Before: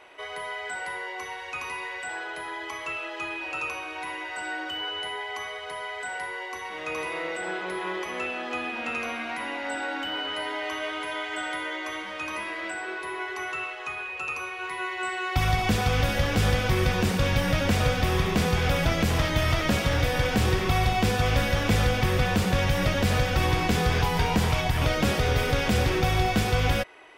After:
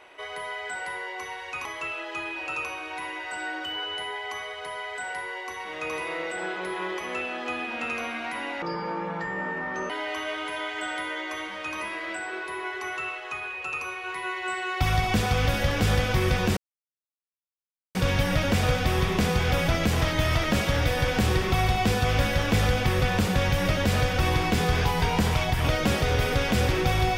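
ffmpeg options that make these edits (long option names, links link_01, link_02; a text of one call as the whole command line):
ffmpeg -i in.wav -filter_complex "[0:a]asplit=5[link_01][link_02][link_03][link_04][link_05];[link_01]atrim=end=1.652[link_06];[link_02]atrim=start=2.698:end=9.674[link_07];[link_03]atrim=start=9.67:end=10.45,asetpts=PTS-STARTPTS,asetrate=26901,aresample=44100,atrim=end_sample=56390,asetpts=PTS-STARTPTS[link_08];[link_04]atrim=start=10.446:end=17.12,asetpts=PTS-STARTPTS,afade=type=out:start_time=6.67:duration=0.004:curve=hsin,apad=pad_dur=1.38[link_09];[link_05]atrim=start=17.12,asetpts=PTS-STARTPTS,afade=type=in:duration=0.004:curve=hsin[link_10];[link_06][link_07]acrossfade=duration=0.004:curve1=hsin:curve2=hsin[link_11];[link_11][link_08]acrossfade=duration=0.004:curve1=hsin:curve2=hsin[link_12];[link_09][link_10]concat=n=2:v=0:a=1[link_13];[link_12][link_13]acrossfade=duration=0.004:curve1=hsin:curve2=hsin" out.wav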